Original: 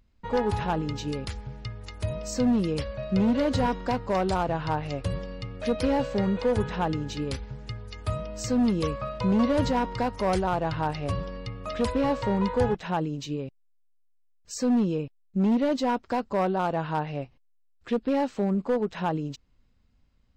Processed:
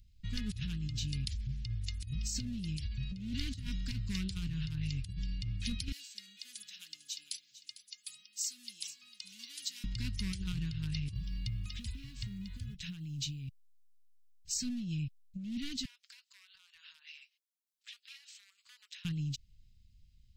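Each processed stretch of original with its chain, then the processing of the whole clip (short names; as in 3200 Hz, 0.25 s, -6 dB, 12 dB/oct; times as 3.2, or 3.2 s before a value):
5.92–9.84 HPF 220 Hz 24 dB/oct + differentiator + echo 0.45 s -14.5 dB
11.14–14.61 compressor 16:1, threshold -33 dBFS + short-mantissa float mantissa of 6-bit
15.85–19.05 steep high-pass 840 Hz + compressor 12:1, threshold -40 dBFS + tremolo saw down 1.1 Hz, depth 40%
whole clip: Chebyshev band-stop 140–3000 Hz, order 2; bell 710 Hz -14 dB 2.5 oct; negative-ratio compressor -39 dBFS, ratio -1; gain +2.5 dB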